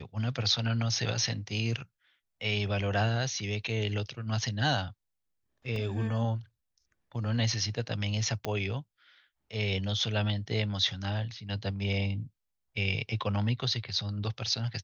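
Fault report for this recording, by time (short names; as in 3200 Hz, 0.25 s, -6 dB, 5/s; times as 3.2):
5.76 gap 2.2 ms
8.45 pop -17 dBFS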